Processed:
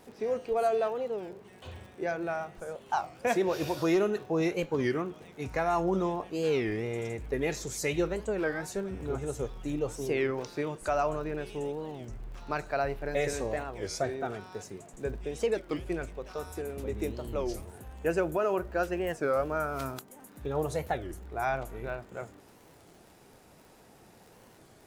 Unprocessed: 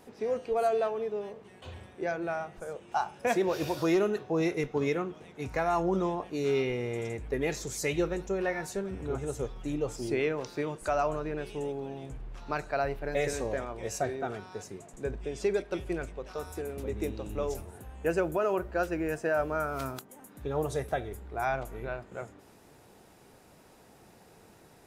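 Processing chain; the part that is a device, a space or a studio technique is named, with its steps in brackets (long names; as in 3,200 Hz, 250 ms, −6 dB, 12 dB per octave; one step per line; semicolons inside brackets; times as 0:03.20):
warped LP (wow of a warped record 33 1/3 rpm, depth 250 cents; surface crackle 67 per second −47 dBFS; pink noise bed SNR 43 dB)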